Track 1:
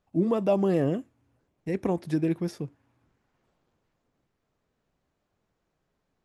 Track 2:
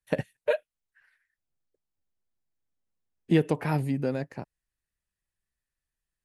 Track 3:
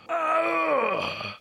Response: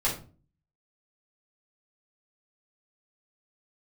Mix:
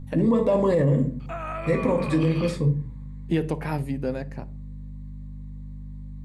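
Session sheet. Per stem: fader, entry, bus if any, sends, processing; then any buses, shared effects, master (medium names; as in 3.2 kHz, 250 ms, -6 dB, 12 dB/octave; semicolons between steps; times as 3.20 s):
+2.5 dB, 0.00 s, send -10 dB, rippled EQ curve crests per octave 1, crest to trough 12 dB; hum 50 Hz, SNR 13 dB; peaking EQ 140 Hz +7 dB 0.67 oct
-1.0 dB, 0.00 s, send -21.5 dB, auto duck -13 dB, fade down 0.30 s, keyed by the first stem
-4.5 dB, 1.20 s, no send, compression 3:1, threshold -27 dBFS, peak gain reduction 6.5 dB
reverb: on, RT60 0.40 s, pre-delay 4 ms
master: peak limiter -13 dBFS, peak gain reduction 10 dB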